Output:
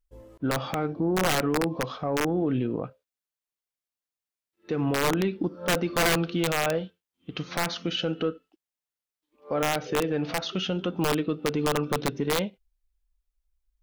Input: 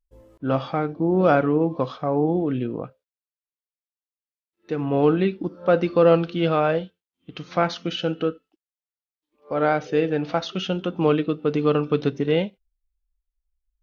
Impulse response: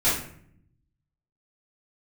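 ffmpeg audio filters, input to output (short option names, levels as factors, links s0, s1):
-af "acontrast=76,aeval=exprs='(mod(2*val(0)+1,2)-1)/2':c=same,alimiter=limit=0.211:level=0:latency=1:release=156,volume=0.596"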